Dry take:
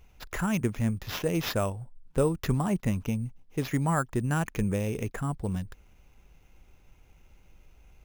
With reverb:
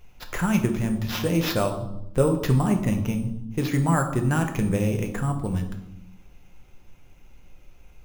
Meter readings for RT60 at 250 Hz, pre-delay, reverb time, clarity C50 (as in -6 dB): 1.3 s, 6 ms, 0.85 s, 9.0 dB